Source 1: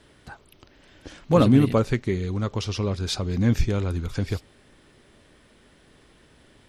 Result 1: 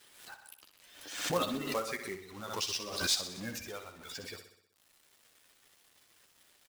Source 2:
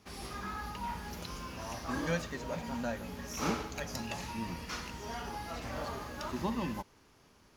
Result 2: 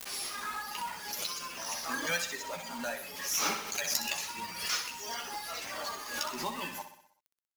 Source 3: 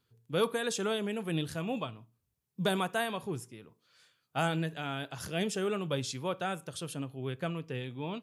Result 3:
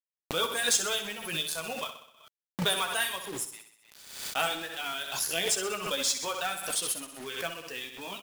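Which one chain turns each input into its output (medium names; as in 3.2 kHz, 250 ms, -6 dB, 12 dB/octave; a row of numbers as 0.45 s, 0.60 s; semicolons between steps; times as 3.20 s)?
reverb removal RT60 1.2 s; spectral gate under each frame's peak -30 dB strong; high-pass 230 Hz 6 dB/octave; tilt EQ +4 dB/octave; flange 0.87 Hz, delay 9.5 ms, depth 3.7 ms, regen -11%; companded quantiser 4-bit; on a send: feedback delay 63 ms, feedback 55%, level -9.5 dB; on the sum: swell ahead of each attack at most 69 dB/s; peak normalisation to -12 dBFS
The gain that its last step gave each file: -6.0 dB, +5.5 dB, +4.5 dB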